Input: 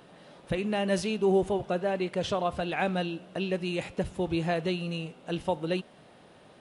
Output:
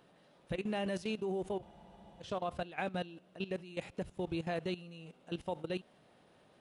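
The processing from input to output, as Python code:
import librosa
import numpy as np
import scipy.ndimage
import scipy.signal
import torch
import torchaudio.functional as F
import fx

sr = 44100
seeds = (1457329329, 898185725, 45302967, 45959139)

y = fx.level_steps(x, sr, step_db=15)
y = fx.spec_freeze(y, sr, seeds[0], at_s=1.65, hold_s=0.56)
y = y * librosa.db_to_amplitude(-5.0)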